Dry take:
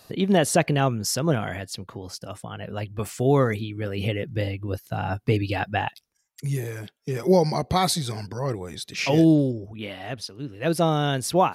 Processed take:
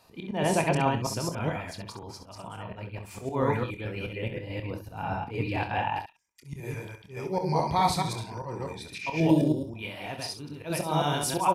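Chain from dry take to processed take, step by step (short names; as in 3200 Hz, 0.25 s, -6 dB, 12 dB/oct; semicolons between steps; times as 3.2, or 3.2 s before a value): reverse delay 0.107 s, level -1 dB; small resonant body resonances 940/2400 Hz, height 13 dB, ringing for 30 ms; auto swell 0.131 s; high shelf 5000 Hz -5 dB, from 9.29 s +8.5 dB; early reflections 26 ms -9 dB, 66 ms -10 dB; gain -8 dB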